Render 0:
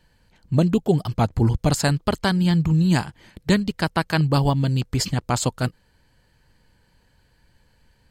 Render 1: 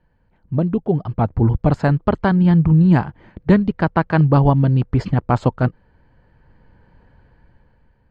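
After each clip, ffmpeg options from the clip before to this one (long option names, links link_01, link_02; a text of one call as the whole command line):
ffmpeg -i in.wav -af "lowpass=1400,dynaudnorm=framelen=270:gausssize=9:maxgain=14.5dB,volume=-1dB" out.wav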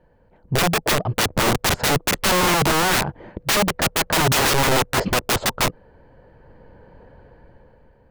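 ffmpeg -i in.wav -af "equalizer=frequency=520:width_type=o:width=1.4:gain=11.5,aeval=exprs='(mod(4.47*val(0)+1,2)-1)/4.47':channel_layout=same,aeval=exprs='0.224*(cos(1*acos(clip(val(0)/0.224,-1,1)))-cos(1*PI/2))+0.0112*(cos(5*acos(clip(val(0)/0.224,-1,1)))-cos(5*PI/2))':channel_layout=same" out.wav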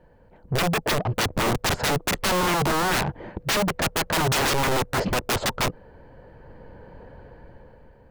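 ffmpeg -i in.wav -af "asoftclip=type=tanh:threshold=-23dB,volume=2.5dB" out.wav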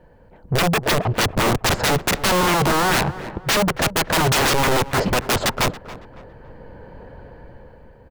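ffmpeg -i in.wav -filter_complex "[0:a]asplit=2[link_01][link_02];[link_02]adelay=278,lowpass=frequency=2400:poles=1,volume=-15.5dB,asplit=2[link_03][link_04];[link_04]adelay=278,lowpass=frequency=2400:poles=1,volume=0.39,asplit=2[link_05][link_06];[link_06]adelay=278,lowpass=frequency=2400:poles=1,volume=0.39[link_07];[link_01][link_03][link_05][link_07]amix=inputs=4:normalize=0,volume=4.5dB" out.wav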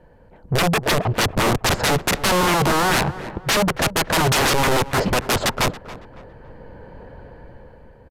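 ffmpeg -i in.wav -af "aresample=32000,aresample=44100" out.wav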